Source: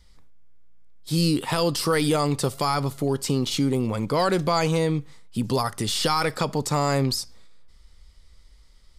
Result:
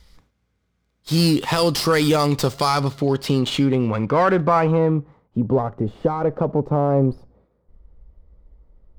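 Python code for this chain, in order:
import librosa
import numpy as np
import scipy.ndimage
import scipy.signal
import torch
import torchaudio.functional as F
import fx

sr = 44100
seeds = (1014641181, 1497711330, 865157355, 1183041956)

y = fx.filter_sweep_lowpass(x, sr, from_hz=6900.0, to_hz=600.0, start_s=2.48, end_s=5.66, q=1.2)
y = fx.running_max(y, sr, window=3)
y = y * librosa.db_to_amplitude(4.5)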